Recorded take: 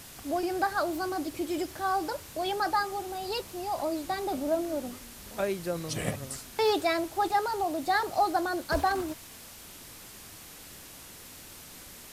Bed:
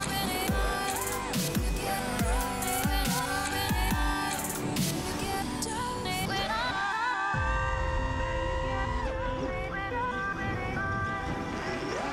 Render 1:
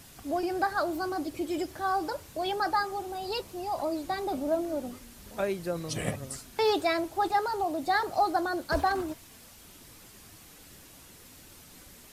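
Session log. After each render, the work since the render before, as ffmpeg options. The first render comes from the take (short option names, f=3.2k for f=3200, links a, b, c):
-af "afftdn=nr=6:nf=-48"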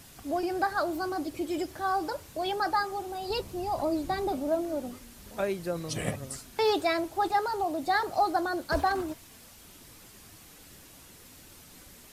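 -filter_complex "[0:a]asettb=1/sr,asplit=3[a][b][c];[a]atrim=end=3.304[d];[b]atrim=start=3.3:end=4.32,asetpts=PTS-STARTPTS,afade=t=in:d=0.004:c=qsin,afade=t=out:st=1.016:d=0.004:c=qsin,lowshelf=f=270:g=9[e];[c]atrim=start=4.316[f];[d][e]acrossfade=d=0.004:c1=hsin:c2=qsin[g];[g][f]acrossfade=d=0.004:c1=qsin:c2=hsin"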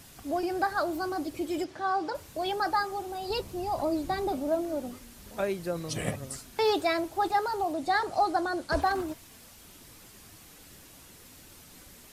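-filter_complex "[0:a]asettb=1/sr,asplit=3[a][b][c];[a]atrim=end=1.644[d];[b]atrim=start=1.64:end=2.15,asetpts=PTS-STARTPTS,afade=t=in:d=0.004:c=qsin,afade=t=out:st=0.506:d=0.004:c=qsin,highpass=130,lowpass=5.4k[e];[c]atrim=start=2.146[f];[d][e]acrossfade=d=0.004:c1=hsin:c2=qsin[g];[g][f]acrossfade=d=0.004:c1=qsin:c2=hsin,asettb=1/sr,asplit=3[h][i][j];[h]atrim=end=7.734[k];[i]atrim=start=7.73:end=8.82,asetpts=PTS-STARTPTS,afade=t=in:d=0.004:c=qsin,afade=t=out:st=1.086:d=0.004:c=qsin,lowpass=f=11k:w=0.5412,lowpass=f=11k:w=1.3066[l];[j]atrim=start=8.816[m];[k][l]acrossfade=d=0.004:c1=hsin:c2=qsin[n];[n][m]acrossfade=d=0.004:c1=qsin:c2=hsin"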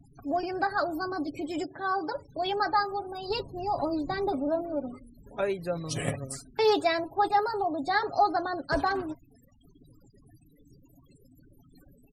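-af "afftfilt=real='re*gte(hypot(re,im),0.00562)':imag='im*gte(hypot(re,im),0.00562)':win_size=1024:overlap=0.75,aecho=1:1:7.2:0.48"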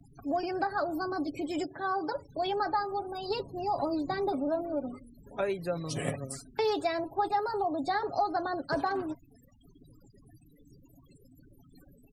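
-filter_complex "[0:a]acrossover=split=110|1100[a][b][c];[a]acompressor=threshold=-55dB:ratio=4[d];[b]acompressor=threshold=-27dB:ratio=4[e];[c]acompressor=threshold=-38dB:ratio=4[f];[d][e][f]amix=inputs=3:normalize=0"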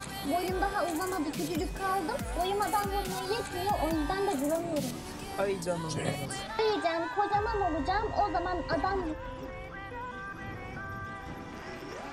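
-filter_complex "[1:a]volume=-8.5dB[a];[0:a][a]amix=inputs=2:normalize=0"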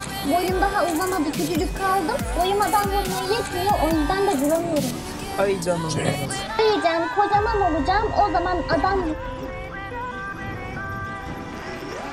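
-af "volume=9.5dB"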